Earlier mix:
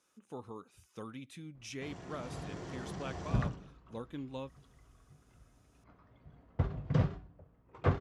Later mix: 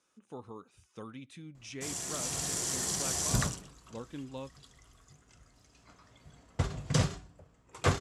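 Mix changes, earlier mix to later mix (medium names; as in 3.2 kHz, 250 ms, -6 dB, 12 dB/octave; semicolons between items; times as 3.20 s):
background: remove tape spacing loss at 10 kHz 44 dB; master: add low-pass 9.9 kHz 24 dB/octave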